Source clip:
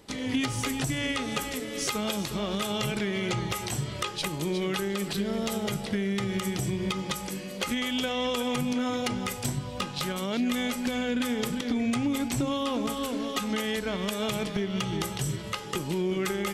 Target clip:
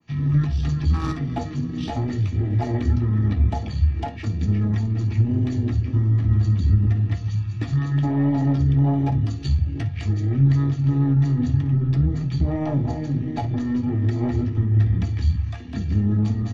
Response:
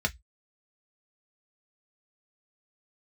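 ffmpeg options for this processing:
-filter_complex "[0:a]afwtdn=0.0355,tiltshelf=frequency=970:gain=-4,aeval=exprs='(tanh(22.4*val(0)+0.7)-tanh(0.7))/22.4':channel_layout=same,acrossover=split=230|960[link_01][link_02][link_03];[link_03]aeval=exprs='0.0251*(abs(mod(val(0)/0.0251+3,4)-2)-1)':channel_layout=same[link_04];[link_01][link_02][link_04]amix=inputs=3:normalize=0,aecho=1:1:16|58:0.398|0.211,asetrate=24750,aresample=44100,atempo=1.7818[link_05];[1:a]atrim=start_sample=2205,asetrate=57330,aresample=44100[link_06];[link_05][link_06]afir=irnorm=-1:irlink=0,adynamicequalizer=threshold=0.00501:dfrequency=1600:dqfactor=0.7:tfrequency=1600:tqfactor=0.7:attack=5:release=100:ratio=0.375:range=2:mode=cutabove:tftype=highshelf,volume=4.5dB"

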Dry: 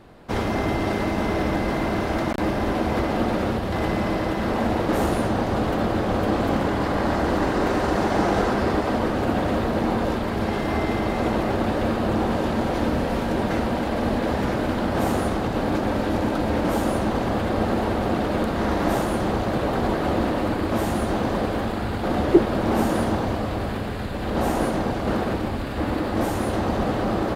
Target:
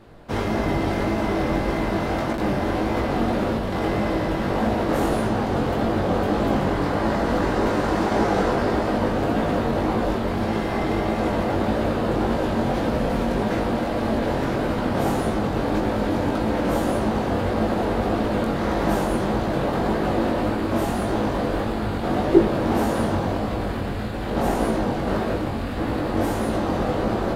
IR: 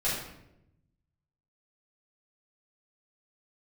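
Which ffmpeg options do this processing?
-filter_complex "[0:a]flanger=delay=18:depth=4:speed=1.7,asplit=2[link_01][link_02];[1:a]atrim=start_sample=2205,lowpass=1300[link_03];[link_02][link_03]afir=irnorm=-1:irlink=0,volume=-18dB[link_04];[link_01][link_04]amix=inputs=2:normalize=0,volume=2.5dB"

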